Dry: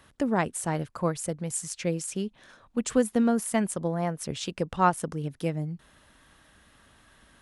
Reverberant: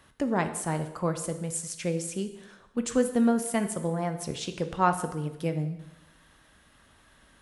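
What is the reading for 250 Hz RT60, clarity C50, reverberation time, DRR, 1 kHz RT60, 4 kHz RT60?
1.0 s, 11.0 dB, 0.90 s, 8.0 dB, 0.90 s, 0.85 s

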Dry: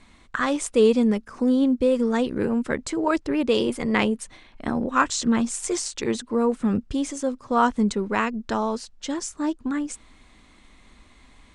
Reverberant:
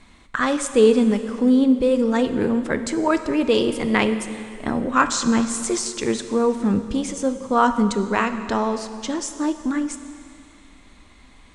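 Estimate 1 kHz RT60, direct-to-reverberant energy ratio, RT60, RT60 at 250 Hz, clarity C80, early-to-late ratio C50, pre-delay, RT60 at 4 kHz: 2.5 s, 9.0 dB, 2.5 s, 2.4 s, 11.0 dB, 10.0 dB, 6 ms, 2.3 s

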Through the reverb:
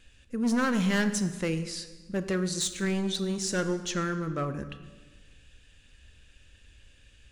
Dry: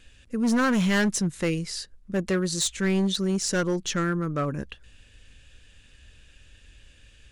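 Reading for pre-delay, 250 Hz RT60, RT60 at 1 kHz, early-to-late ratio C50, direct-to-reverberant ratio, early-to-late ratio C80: 23 ms, 1.5 s, 1.3 s, 11.5 dB, 10.0 dB, 12.5 dB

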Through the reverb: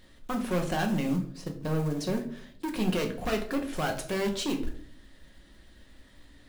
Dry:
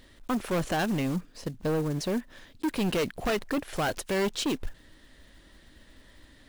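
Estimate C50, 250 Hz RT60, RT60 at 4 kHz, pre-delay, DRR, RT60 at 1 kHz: 11.0 dB, 0.90 s, 0.40 s, 5 ms, 3.0 dB, 0.50 s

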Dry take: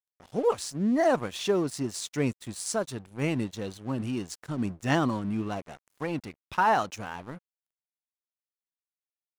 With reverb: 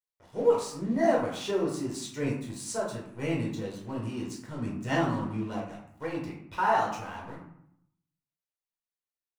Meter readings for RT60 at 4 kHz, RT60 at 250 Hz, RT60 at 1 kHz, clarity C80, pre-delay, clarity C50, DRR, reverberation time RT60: 0.40 s, 0.85 s, 0.75 s, 7.5 dB, 8 ms, 4.0 dB, −4.0 dB, 0.70 s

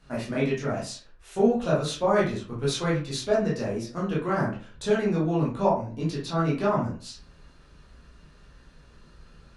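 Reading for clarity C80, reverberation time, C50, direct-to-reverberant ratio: 11.5 dB, 0.40 s, 5.5 dB, −7.0 dB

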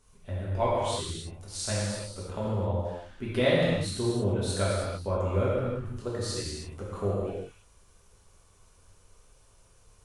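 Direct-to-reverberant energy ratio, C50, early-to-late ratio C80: −8.0 dB, −2.0 dB, 0.0 dB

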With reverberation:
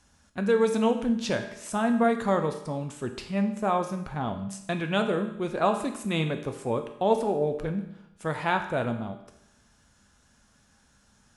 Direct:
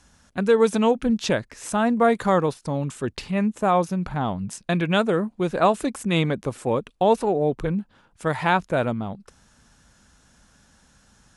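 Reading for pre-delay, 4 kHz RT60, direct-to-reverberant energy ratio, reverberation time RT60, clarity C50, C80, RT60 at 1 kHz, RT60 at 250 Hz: 5 ms, 0.80 s, 5.0 dB, 0.80 s, 9.0 dB, 11.5 dB, 0.85 s, 0.80 s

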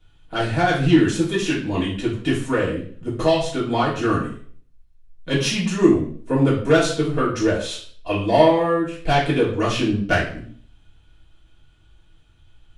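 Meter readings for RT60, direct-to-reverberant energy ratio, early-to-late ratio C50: 0.50 s, −8.0 dB, 6.0 dB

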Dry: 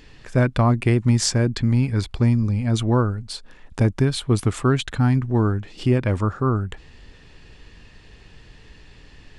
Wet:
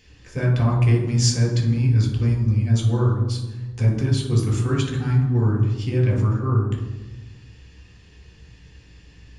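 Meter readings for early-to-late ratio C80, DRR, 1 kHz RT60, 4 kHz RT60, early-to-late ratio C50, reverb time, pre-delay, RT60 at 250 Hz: 8.0 dB, −2.0 dB, 1.0 s, 0.80 s, 4.5 dB, 1.2 s, 3 ms, 1.6 s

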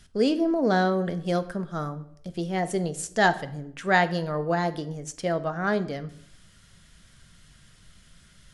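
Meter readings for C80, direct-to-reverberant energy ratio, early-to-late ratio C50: 19.0 dB, 10.5 dB, 16.0 dB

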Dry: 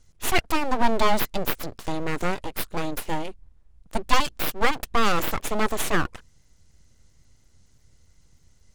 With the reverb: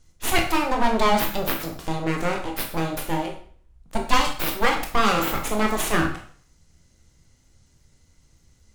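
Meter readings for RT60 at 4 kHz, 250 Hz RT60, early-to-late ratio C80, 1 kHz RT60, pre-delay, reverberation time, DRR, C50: 0.45 s, 0.45 s, 11.0 dB, 0.50 s, 7 ms, 0.50 s, 1.5 dB, 7.5 dB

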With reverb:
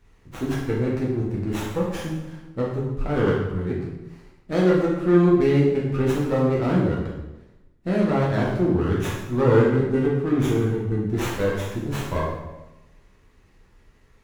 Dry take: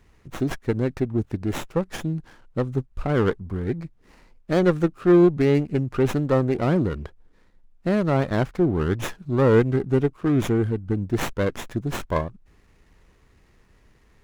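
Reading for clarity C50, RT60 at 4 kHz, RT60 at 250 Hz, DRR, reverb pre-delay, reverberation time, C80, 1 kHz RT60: 2.0 dB, 0.85 s, 1.1 s, −5.5 dB, 6 ms, 1.0 s, 4.5 dB, 1.0 s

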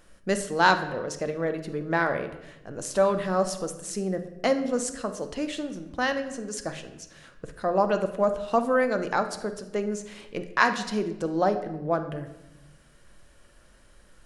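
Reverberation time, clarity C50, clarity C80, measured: 0.95 s, 10.5 dB, 13.5 dB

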